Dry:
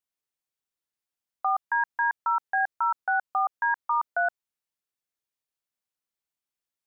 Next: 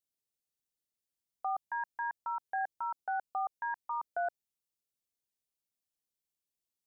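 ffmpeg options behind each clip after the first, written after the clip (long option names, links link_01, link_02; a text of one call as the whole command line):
ffmpeg -i in.wav -af "equalizer=frequency=1400:width_type=o:width=1.6:gain=-14.5" out.wav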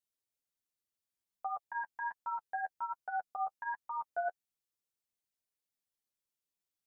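ffmpeg -i in.wav -af "flanger=delay=8.1:depth=3.9:regen=10:speed=1.3:shape=triangular,volume=1dB" out.wav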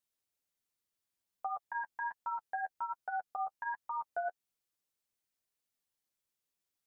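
ffmpeg -i in.wav -af "acompressor=threshold=-38dB:ratio=2,volume=2.5dB" out.wav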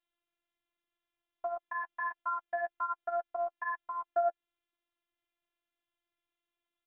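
ffmpeg -i in.wav -af "aresample=8000,aresample=44100,afftfilt=real='hypot(re,im)*cos(PI*b)':imag='0':win_size=512:overlap=0.75,volume=8dB" out.wav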